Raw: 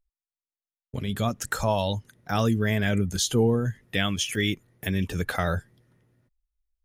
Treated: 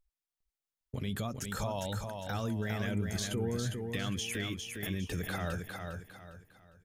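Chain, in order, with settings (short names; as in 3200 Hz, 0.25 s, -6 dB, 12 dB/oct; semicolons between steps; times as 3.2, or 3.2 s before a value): compressor, threshold -29 dBFS, peak gain reduction 11.5 dB; limiter -27 dBFS, peak gain reduction 10 dB; on a send: feedback echo 0.405 s, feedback 33%, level -5 dB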